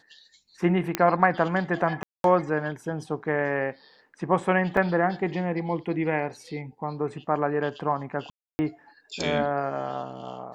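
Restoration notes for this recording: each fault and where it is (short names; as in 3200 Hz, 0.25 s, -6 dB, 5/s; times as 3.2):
0.95 pop -8 dBFS
2.03–2.24 gap 0.212 s
4.77 gap 3 ms
8.3–8.59 gap 0.29 s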